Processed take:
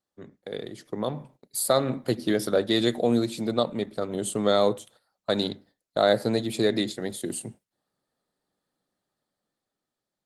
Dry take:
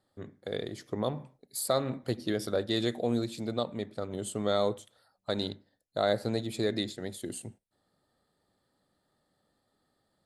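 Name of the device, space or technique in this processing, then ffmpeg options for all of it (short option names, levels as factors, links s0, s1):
video call: -af "highpass=f=120:w=0.5412,highpass=f=120:w=1.3066,highshelf=f=4600:g=2,dynaudnorm=f=290:g=9:m=2.24,agate=range=0.251:threshold=0.00251:ratio=16:detection=peak" -ar 48000 -c:a libopus -b:a 20k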